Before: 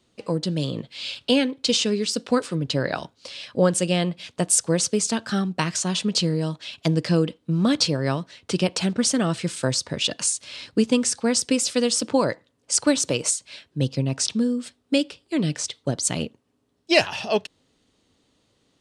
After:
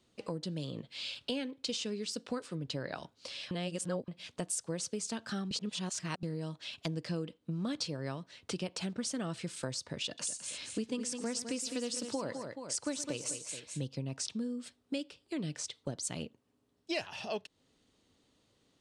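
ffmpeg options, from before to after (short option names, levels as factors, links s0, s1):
-filter_complex "[0:a]asettb=1/sr,asplit=3[s0][s1][s2];[s0]atrim=end=10.064[s3];[s1]atrim=start=10.06:end=13.84,asetpts=PTS-STARTPTS,afade=t=in:d=0.004:c=qsin,afade=t=out:st=3.776:d=0.004:c=qsin,aecho=1:1:116|207|427:0.141|0.316|0.126,atrim=end_sample=166698[s4];[s2]atrim=start=13.836[s5];[s3][s4]acrossfade=d=0.004:c1=hsin:c2=qsin[s6];[s6][s5]acrossfade=d=0.004:c1=qsin:c2=hsin,asplit=5[s7][s8][s9][s10][s11];[s7]atrim=end=3.512[s12];[s8]atrim=start=3.508:end=4.082,asetpts=PTS-STARTPTS,areverse[s13];[s9]atrim=start=4.078:end=5.512[s14];[s10]atrim=start=5.508:end=6.232,asetpts=PTS-STARTPTS,areverse[s15];[s11]atrim=start=6.228[s16];[s12][s13]acrossfade=d=0.004:c1=hsin:c2=hsin[s17];[s17][s14]acrossfade=d=0.004:c1=hsin:c2=hsin[s18];[s18][s15]acrossfade=d=0.004:c1=hsin:c2=hsin[s19];[s19][s16]acrossfade=d=0.004:c1=hsin:c2=hsin,acompressor=threshold=0.0224:ratio=2.5,volume=0.531"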